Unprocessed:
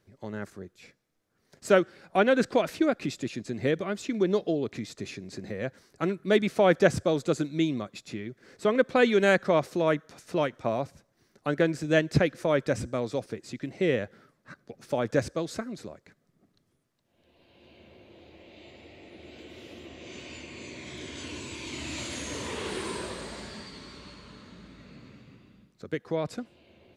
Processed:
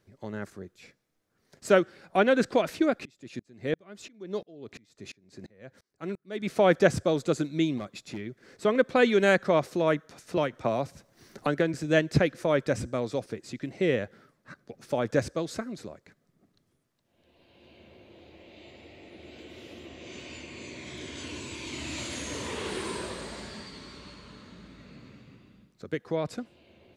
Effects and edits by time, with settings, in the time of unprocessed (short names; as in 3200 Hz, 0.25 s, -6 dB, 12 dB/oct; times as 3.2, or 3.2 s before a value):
3.05–6.5 dB-ramp tremolo swelling 2.9 Hz, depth 31 dB
7.78–8.21 hard clip -29.5 dBFS
10.37–11.74 three-band squash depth 70%